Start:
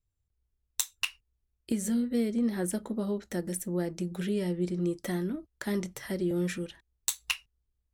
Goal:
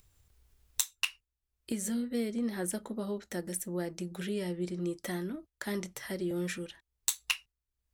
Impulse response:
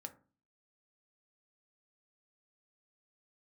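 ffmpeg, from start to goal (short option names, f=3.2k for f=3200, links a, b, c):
-af "lowshelf=f=440:g=-6.5,agate=range=-6dB:threshold=-53dB:ratio=16:detection=peak,acompressor=mode=upward:threshold=-44dB:ratio=2.5"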